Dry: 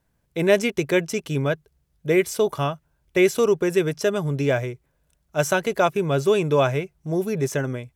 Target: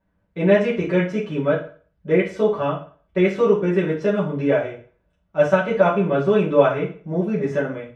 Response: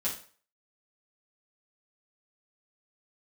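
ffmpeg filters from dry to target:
-filter_complex "[0:a]lowpass=2.1k[a];[1:a]atrim=start_sample=2205[b];[a][b]afir=irnorm=-1:irlink=0,volume=-2dB"

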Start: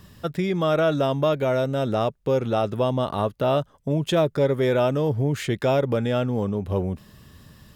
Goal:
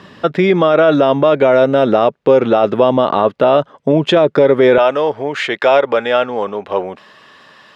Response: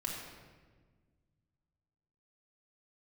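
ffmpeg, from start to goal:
-af "asetnsamples=n=441:p=0,asendcmd='4.78 highpass f 680',highpass=270,lowpass=3k,alimiter=level_in=17dB:limit=-1dB:release=50:level=0:latency=1,volume=-1dB"

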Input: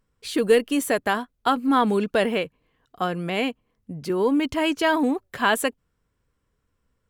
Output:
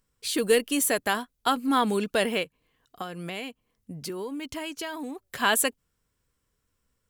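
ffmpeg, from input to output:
-filter_complex "[0:a]highshelf=f=3.4k:g=12,asplit=3[a][b][c];[a]afade=t=out:st=2.43:d=0.02[d];[b]acompressor=threshold=-27dB:ratio=12,afade=t=in:st=2.43:d=0.02,afade=t=out:st=5.26:d=0.02[e];[c]afade=t=in:st=5.26:d=0.02[f];[d][e][f]amix=inputs=3:normalize=0,volume=-4.5dB"

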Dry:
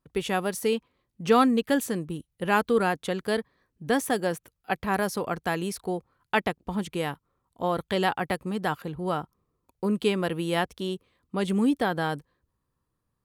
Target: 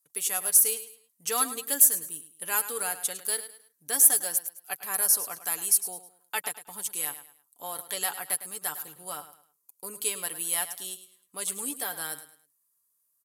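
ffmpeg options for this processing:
-filter_complex "[0:a]aderivative,aresample=32000,aresample=44100,highshelf=f=2.6k:g=-11,aecho=1:1:6.9:0.41,aecho=1:1:105|210|315:0.224|0.0716|0.0229,acrossover=split=5000[a][b];[b]crystalizer=i=6:c=0[c];[a][c]amix=inputs=2:normalize=0,volume=8.5dB" -ar 44100 -c:a libmp3lame -b:a 160k

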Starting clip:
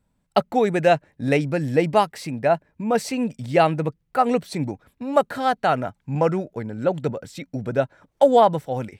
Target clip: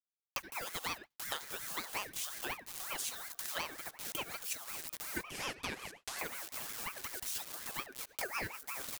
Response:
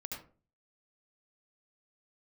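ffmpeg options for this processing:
-filter_complex "[0:a]aecho=1:1:1141:0.0891,acrusher=bits=6:mix=0:aa=0.000001,acompressor=mode=upward:threshold=-18dB:ratio=2.5,aderivative,aeval=exprs='sgn(val(0))*max(abs(val(0))-0.00708,0)':c=same,asettb=1/sr,asplit=3[a][b][c];[a]atrim=end=5.274[d];[b]atrim=start=5.27:end=6.19,asetpts=PTS-STARTPTS,afade=t=in:d=0.004:c=qsin,afade=t=out:st=0.916:d=0.004:c=qsin,lowpass=8.9k[e];[c]atrim=start=6.186[f];[d][e]acrossfade=d=0.004:c1=hsin:c2=qsin[g];[g][f]acrossfade=d=0.004:c1=qsin:c2=hsin,asplit=2[h][i];[i]equalizer=f=630:t=o:w=0.71:g=8[j];[1:a]atrim=start_sample=2205,afade=t=out:st=0.17:d=0.01,atrim=end_sample=7938,highshelf=f=3.7k:g=-6.5[k];[j][k]afir=irnorm=-1:irlink=0,volume=-13dB[l];[h][l]amix=inputs=2:normalize=0,acrossover=split=120[m][n];[n]acompressor=threshold=-50dB:ratio=4[o];[m][o]amix=inputs=2:normalize=0,aeval=exprs='val(0)*sin(2*PI*1400*n/s+1400*0.35/5.5*sin(2*PI*5.5*n/s))':c=same,volume=14dB"

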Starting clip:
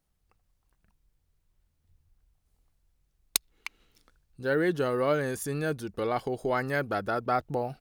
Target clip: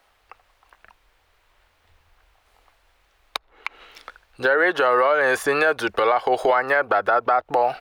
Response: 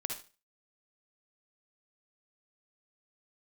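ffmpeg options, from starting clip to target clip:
-filter_complex "[0:a]acrossover=split=580|1400[a][b][c];[a]acompressor=threshold=-35dB:ratio=4[d];[b]acompressor=threshold=-29dB:ratio=4[e];[c]acompressor=threshold=-45dB:ratio=4[f];[d][e][f]amix=inputs=3:normalize=0,acrossover=split=530 3600:gain=0.0794 1 0.141[g][h][i];[g][h][i]amix=inputs=3:normalize=0,acompressor=threshold=-40dB:ratio=6,equalizer=f=160:w=2.7:g=-9.5,alimiter=level_in=35dB:limit=-1dB:release=50:level=0:latency=1,volume=-8dB"

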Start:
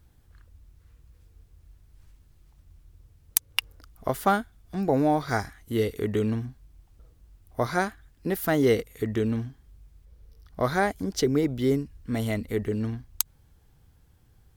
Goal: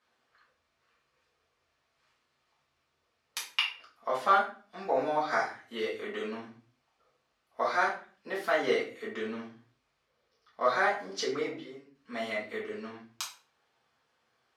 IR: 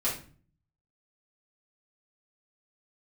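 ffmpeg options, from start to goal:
-filter_complex "[0:a]asettb=1/sr,asplit=3[a][b][c];[a]atrim=end=11.524[d];[b]atrim=start=11.52:end=11.95,asetpts=PTS-STARTPTS,afade=t=in:d=0.004:c=qsin,afade=t=out:st=0.426:d=0.004:c=qsin,acompressor=threshold=-38dB:ratio=4[e];[c]atrim=start=11.946[f];[d][e]acrossfade=d=0.004:c1=hsin:c2=qsin[g];[g][f]acrossfade=d=0.004:c1=qsin:c2=hsin,highpass=700,lowpass=4.5k[h];[1:a]atrim=start_sample=2205,afade=t=out:st=0.42:d=0.01,atrim=end_sample=18963[i];[h][i]afir=irnorm=-1:irlink=0,volume=-5.5dB"

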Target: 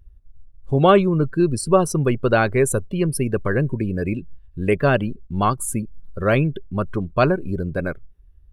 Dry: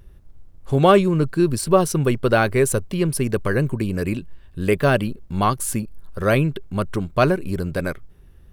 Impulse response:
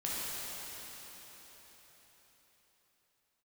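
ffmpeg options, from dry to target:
-af "afftdn=nr=18:nf=-33"

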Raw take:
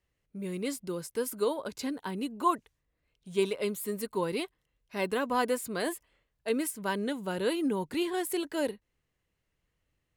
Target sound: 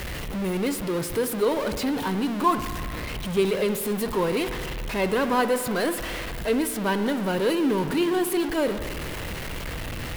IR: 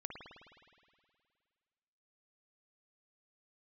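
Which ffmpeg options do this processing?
-filter_complex "[0:a]aeval=exprs='val(0)+0.5*0.0355*sgn(val(0))':c=same,asplit=2[a][b];[b]lowpass=7k[c];[1:a]atrim=start_sample=2205,lowpass=8.9k[d];[c][d]afir=irnorm=-1:irlink=0,volume=-1.5dB[e];[a][e]amix=inputs=2:normalize=0"

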